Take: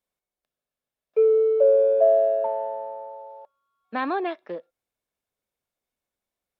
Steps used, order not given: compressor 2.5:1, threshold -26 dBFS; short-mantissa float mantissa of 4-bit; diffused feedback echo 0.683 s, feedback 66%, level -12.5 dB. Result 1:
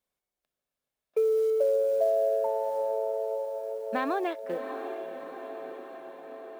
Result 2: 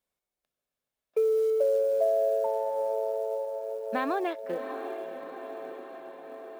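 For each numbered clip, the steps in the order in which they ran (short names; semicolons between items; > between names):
short-mantissa float > diffused feedback echo > compressor; diffused feedback echo > short-mantissa float > compressor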